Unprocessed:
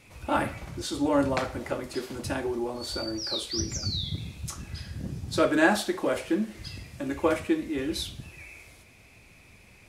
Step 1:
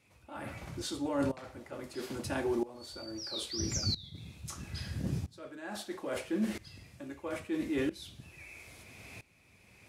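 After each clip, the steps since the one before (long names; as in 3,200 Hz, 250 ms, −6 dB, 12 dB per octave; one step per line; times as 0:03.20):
high-pass filter 67 Hz
reversed playback
downward compressor 10 to 1, threshold −33 dBFS, peak gain reduction 17.5 dB
reversed playback
tremolo with a ramp in dB swelling 0.76 Hz, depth 20 dB
level +7 dB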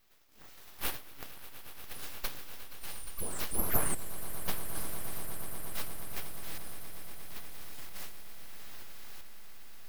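inverse Chebyshev high-pass filter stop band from 1,200 Hz, stop band 70 dB
full-wave rectification
echo that builds up and dies away 118 ms, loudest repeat 8, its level −16.5 dB
level +12.5 dB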